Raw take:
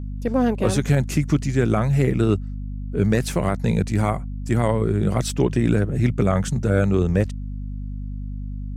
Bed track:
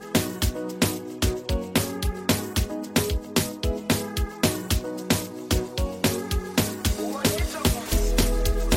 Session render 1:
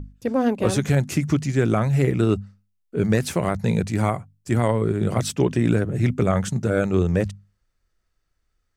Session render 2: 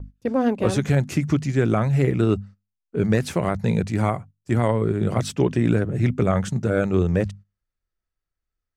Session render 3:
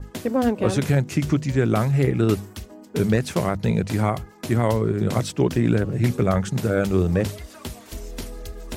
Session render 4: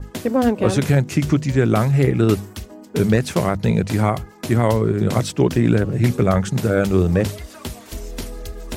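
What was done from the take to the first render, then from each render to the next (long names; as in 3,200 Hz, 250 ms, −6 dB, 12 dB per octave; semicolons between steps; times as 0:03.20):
mains-hum notches 50/100/150/200/250 Hz
noise gate −39 dBFS, range −12 dB; high-shelf EQ 6,300 Hz −7.5 dB
mix in bed track −12 dB
level +3.5 dB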